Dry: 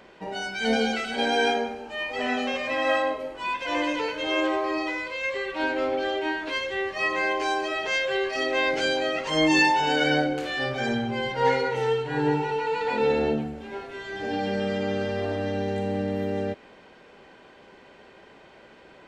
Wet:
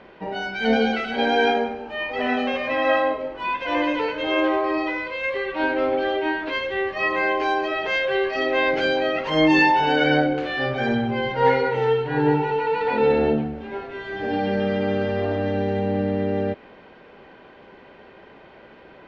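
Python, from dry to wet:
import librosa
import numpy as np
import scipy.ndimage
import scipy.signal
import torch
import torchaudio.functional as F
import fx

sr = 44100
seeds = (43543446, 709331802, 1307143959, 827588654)

y = fx.air_absorb(x, sr, metres=230.0)
y = y * librosa.db_to_amplitude(5.0)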